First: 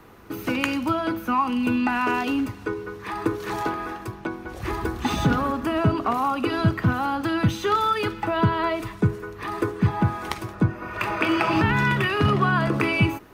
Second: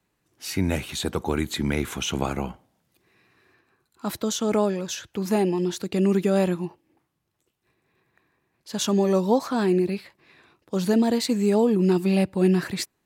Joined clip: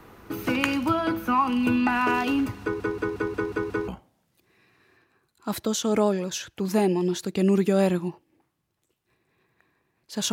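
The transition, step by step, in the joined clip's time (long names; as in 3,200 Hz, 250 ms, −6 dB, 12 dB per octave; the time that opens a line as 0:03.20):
first
0:02.62: stutter in place 0.18 s, 7 plays
0:03.88: continue with second from 0:02.45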